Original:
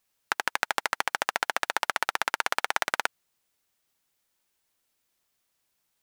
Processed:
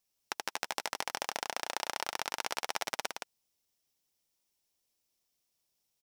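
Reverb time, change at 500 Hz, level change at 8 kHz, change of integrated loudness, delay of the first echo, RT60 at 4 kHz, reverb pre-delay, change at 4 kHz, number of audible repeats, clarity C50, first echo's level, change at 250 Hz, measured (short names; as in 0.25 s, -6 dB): none, -5.5 dB, -3.0 dB, -8.0 dB, 0.168 s, none, none, -4.5 dB, 1, none, -5.5 dB, -4.5 dB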